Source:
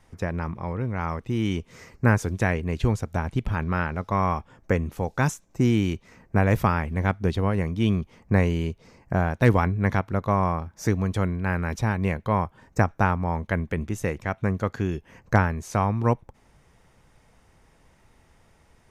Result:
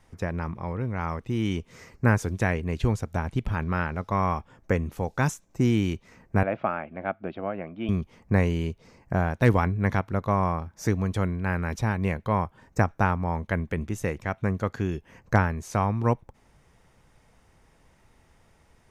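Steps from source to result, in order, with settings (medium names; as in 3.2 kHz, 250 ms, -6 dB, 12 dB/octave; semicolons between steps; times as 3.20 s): 6.43–7.89 s: cabinet simulation 320–2500 Hz, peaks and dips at 440 Hz -9 dB, 650 Hz +7 dB, 990 Hz -9 dB, 1.9 kHz -9 dB; trim -1.5 dB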